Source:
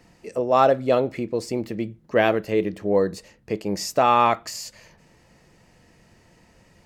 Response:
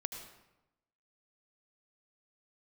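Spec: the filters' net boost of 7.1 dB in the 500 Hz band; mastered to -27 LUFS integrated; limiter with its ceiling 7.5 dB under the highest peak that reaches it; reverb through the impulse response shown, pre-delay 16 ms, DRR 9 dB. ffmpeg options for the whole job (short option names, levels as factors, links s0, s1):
-filter_complex "[0:a]equalizer=f=500:t=o:g=8.5,alimiter=limit=0.398:level=0:latency=1,asplit=2[s0][s1];[1:a]atrim=start_sample=2205,adelay=16[s2];[s1][s2]afir=irnorm=-1:irlink=0,volume=0.355[s3];[s0][s3]amix=inputs=2:normalize=0,volume=0.422"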